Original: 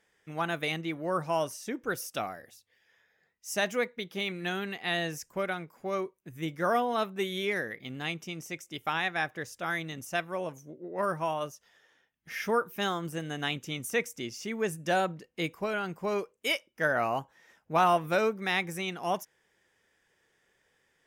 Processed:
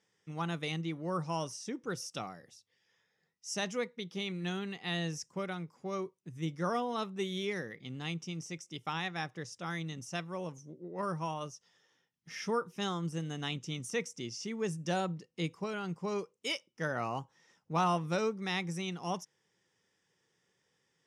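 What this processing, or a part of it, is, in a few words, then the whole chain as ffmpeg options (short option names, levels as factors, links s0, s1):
car door speaker: -af "highpass=96,equalizer=f=120:t=q:w=4:g=6,equalizer=f=170:t=q:w=4:g=7,equalizer=f=650:t=q:w=4:g=-7,equalizer=f=1600:t=q:w=4:g=-7,equalizer=f=2300:t=q:w=4:g=-4,equalizer=f=5500:t=q:w=4:g=7,lowpass=f=9200:w=0.5412,lowpass=f=9200:w=1.3066,volume=0.631"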